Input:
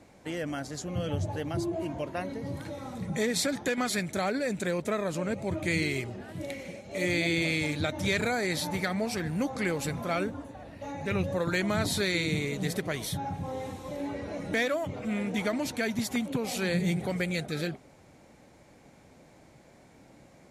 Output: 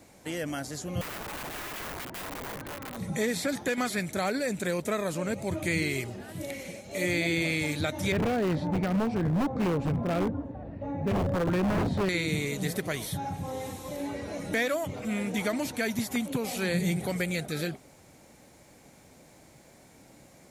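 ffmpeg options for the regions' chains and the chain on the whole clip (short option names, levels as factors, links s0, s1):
-filter_complex "[0:a]asettb=1/sr,asplit=3[s0][s1][s2];[s0]atrim=end=1.014[s3];[s1]atrim=start=1.01:end=2.97,asetpts=PTS-STARTPTS,afade=t=in:d=0.004:c=qsin,afade=t=out:st=1.956:d=0.004:c=qsin,lowpass=1900,aeval=exprs='(mod(47.3*val(0)+1,2)-1)/47.3':c=same[s4];[s2]atrim=start=2.966[s5];[s3][s4]acrossfade=d=0.004:c1=hsin:c2=qsin[s6];[s6][s5]acrossfade=d=0.004:c1=qsin:c2=hsin,asettb=1/sr,asplit=3[s7][s8][s9];[s7]atrim=end=8.124[s10];[s8]atrim=start=8.12:end=12.09,asetpts=PTS-STARTPTS,afade=t=in:d=0.004:c=qsin,afade=t=out:st=3.966:d=0.004:c=qsin,lowpass=2100,tiltshelf=f=790:g=8,aeval=exprs='0.0841*(abs(mod(val(0)/0.0841+3,4)-2)-1)':c=same[s11];[s9]atrim=start=12.086[s12];[s10][s11]acrossfade=d=0.004:c1=hsin:c2=qsin[s13];[s13][s12]acrossfade=d=0.004:c1=qsin:c2=hsin,aemphasis=mode=production:type=50kf,acrossover=split=2700[s14][s15];[s15]acompressor=threshold=0.0158:ratio=4:attack=1:release=60[s16];[s14][s16]amix=inputs=2:normalize=0"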